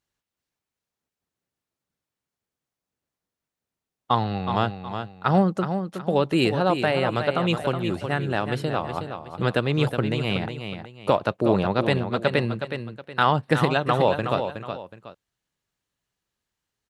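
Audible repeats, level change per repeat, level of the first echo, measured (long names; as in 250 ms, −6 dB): 2, −9.5 dB, −8.0 dB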